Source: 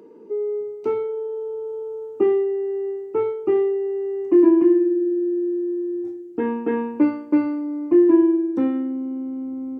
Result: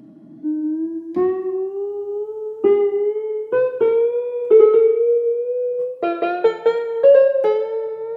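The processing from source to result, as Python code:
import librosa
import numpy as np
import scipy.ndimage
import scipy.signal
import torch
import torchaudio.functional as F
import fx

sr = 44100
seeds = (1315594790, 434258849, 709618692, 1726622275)

y = fx.speed_glide(x, sr, from_pct=66, to_pct=174)
y = fx.rev_schroeder(y, sr, rt60_s=1.1, comb_ms=30, drr_db=8.5)
y = fx.wow_flutter(y, sr, seeds[0], rate_hz=2.1, depth_cents=25.0)
y = y * librosa.db_to_amplitude(3.0)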